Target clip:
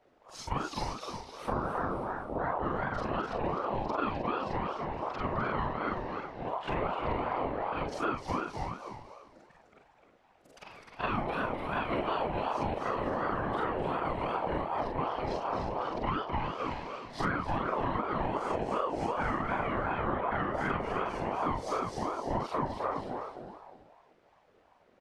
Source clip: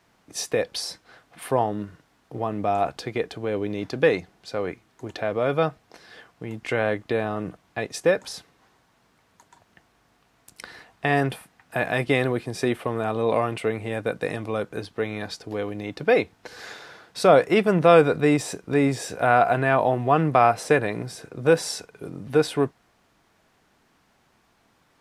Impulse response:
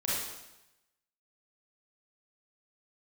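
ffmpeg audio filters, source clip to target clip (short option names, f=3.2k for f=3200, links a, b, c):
-filter_complex "[0:a]afftfilt=real='re':imag='-im':win_size=4096:overlap=0.75,aemphasis=mode=reproduction:type=bsi,asplit=2[a][b];[b]aecho=0:1:317|634|951:0.316|0.0854|0.0231[c];[a][c]amix=inputs=2:normalize=0,aresample=32000,aresample=44100,equalizer=f=8k:t=o:w=1.2:g=-2.5,afftfilt=real='hypot(re,im)*cos(2*PI*random(0))':imag='hypot(re,im)*sin(2*PI*random(1))':win_size=512:overlap=0.75,acontrast=57,asplit=2[d][e];[e]asplit=5[f][g][h][i][j];[f]adelay=255,afreqshift=-74,volume=-5dB[k];[g]adelay=510,afreqshift=-148,volume=-13dB[l];[h]adelay=765,afreqshift=-222,volume=-20.9dB[m];[i]adelay=1020,afreqshift=-296,volume=-28.9dB[n];[j]adelay=1275,afreqshift=-370,volume=-36.8dB[o];[k][l][m][n][o]amix=inputs=5:normalize=0[p];[d][p]amix=inputs=2:normalize=0,acompressor=threshold=-25dB:ratio=12,aeval=exprs='val(0)*sin(2*PI*650*n/s+650*0.35/2.7*sin(2*PI*2.7*n/s))':c=same"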